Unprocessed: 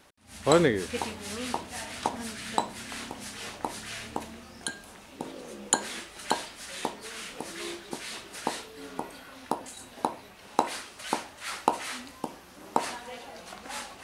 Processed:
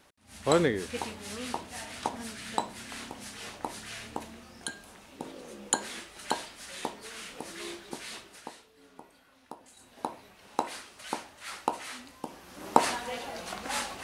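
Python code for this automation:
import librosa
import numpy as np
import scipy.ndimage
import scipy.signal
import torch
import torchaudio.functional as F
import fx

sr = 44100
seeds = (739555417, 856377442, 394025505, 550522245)

y = fx.gain(x, sr, db=fx.line((8.15, -3.0), (8.55, -15.0), (9.56, -15.0), (10.1, -5.0), (12.21, -5.0), (12.67, 5.0)))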